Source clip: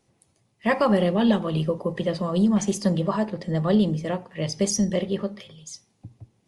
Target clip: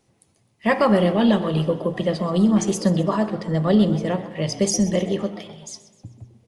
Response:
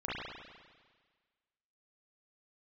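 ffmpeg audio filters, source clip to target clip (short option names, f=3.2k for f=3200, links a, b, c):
-filter_complex "[0:a]asplit=5[a][b][c][d][e];[b]adelay=128,afreqshift=120,volume=-16.5dB[f];[c]adelay=256,afreqshift=240,volume=-23.4dB[g];[d]adelay=384,afreqshift=360,volume=-30.4dB[h];[e]adelay=512,afreqshift=480,volume=-37.3dB[i];[a][f][g][h][i]amix=inputs=5:normalize=0,asplit=2[j][k];[1:a]atrim=start_sample=2205[l];[k][l]afir=irnorm=-1:irlink=0,volume=-18dB[m];[j][m]amix=inputs=2:normalize=0,volume=2dB"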